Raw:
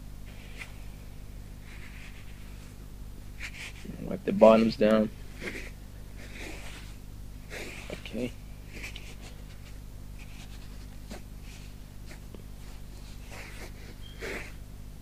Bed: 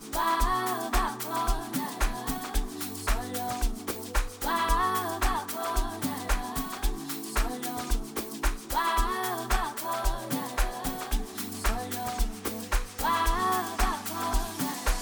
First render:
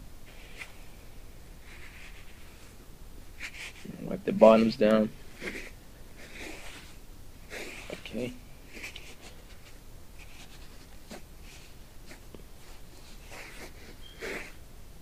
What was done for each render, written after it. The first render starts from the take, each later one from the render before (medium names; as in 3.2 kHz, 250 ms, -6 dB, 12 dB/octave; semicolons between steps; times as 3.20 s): hum notches 50/100/150/200/250 Hz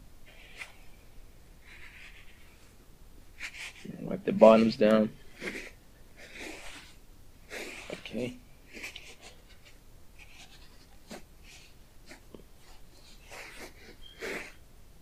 noise print and reduce 6 dB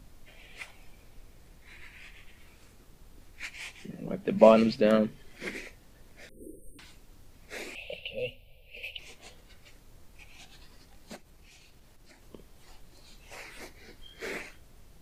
6.29–6.79 s: brick-wall FIR band-stop 540–8400 Hz; 7.75–8.99 s: FFT filter 100 Hz 0 dB, 160 Hz -7 dB, 350 Hz -24 dB, 510 Hz +6 dB, 780 Hz -6 dB, 1.2 kHz -26 dB, 1.8 kHz -22 dB, 2.7 kHz +9 dB, 6.5 kHz -20 dB, 13 kHz -1 dB; 11.16–12.22 s: compression 4:1, threshold -51 dBFS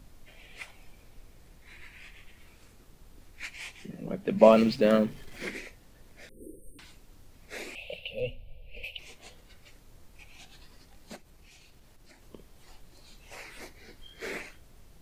4.52–5.46 s: companding laws mixed up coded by mu; 8.20–8.84 s: tilt EQ -2 dB/octave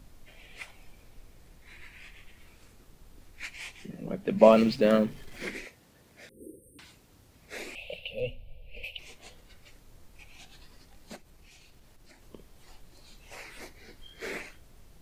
5.64–7.55 s: high-pass 110 Hz -> 48 Hz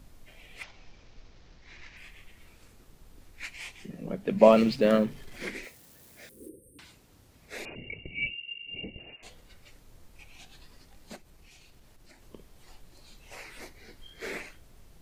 0.63–1.97 s: CVSD coder 32 kbps; 5.63–6.49 s: zero-crossing glitches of -49.5 dBFS; 7.65–9.23 s: frequency inversion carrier 2.8 kHz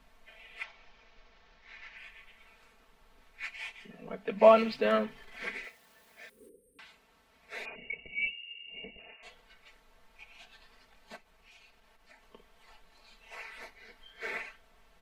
three-band isolator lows -15 dB, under 580 Hz, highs -14 dB, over 3.5 kHz; comb 4.5 ms, depth 87%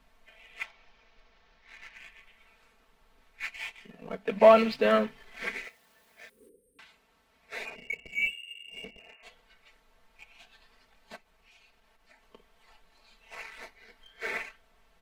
waveshaping leveller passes 1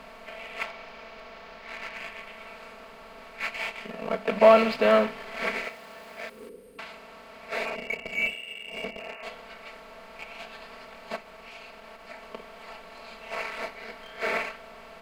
spectral levelling over time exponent 0.6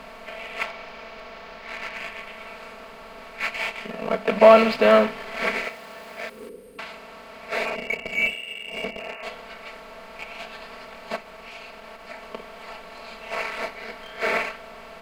trim +4.5 dB; peak limiter -3 dBFS, peak gain reduction 1 dB